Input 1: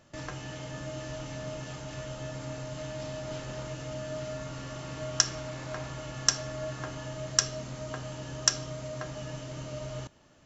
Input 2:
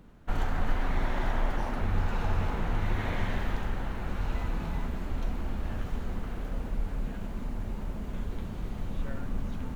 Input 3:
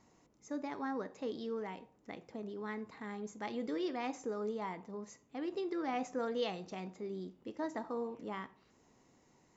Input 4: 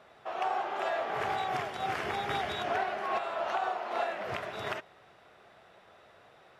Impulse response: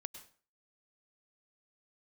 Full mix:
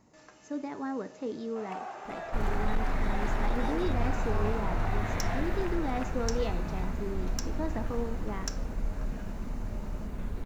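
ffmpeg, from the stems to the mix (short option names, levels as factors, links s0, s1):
-filter_complex "[0:a]highpass=340,volume=0.211[s0];[1:a]adelay=2050,volume=0.891[s1];[2:a]lowshelf=f=500:g=6.5,volume=1[s2];[3:a]adelay=1300,volume=0.398[s3];[s0][s1][s2][s3]amix=inputs=4:normalize=0,equalizer=f=3200:t=o:w=0.31:g=-6,asoftclip=type=hard:threshold=0.0944"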